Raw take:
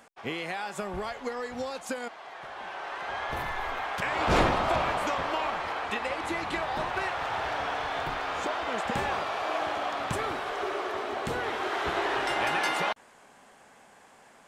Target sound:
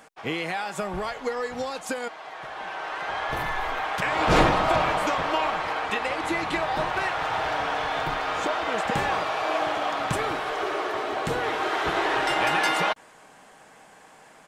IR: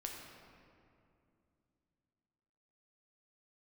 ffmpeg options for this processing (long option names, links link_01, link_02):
-af "aecho=1:1:6.4:0.31,volume=4dB"